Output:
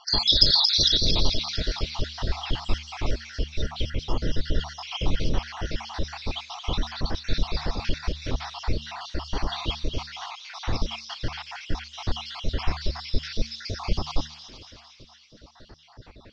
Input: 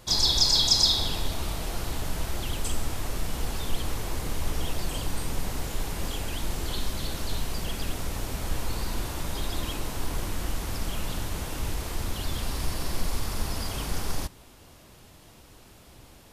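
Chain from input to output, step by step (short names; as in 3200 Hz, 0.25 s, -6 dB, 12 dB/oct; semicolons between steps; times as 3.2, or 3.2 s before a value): random spectral dropouts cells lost 68%; Chebyshev low-pass 5500 Hz, order 5; de-hum 75.24 Hz, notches 3; on a send: thin delay 0.227 s, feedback 64%, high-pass 3200 Hz, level -5.5 dB; on the sum: gain +7.5 dB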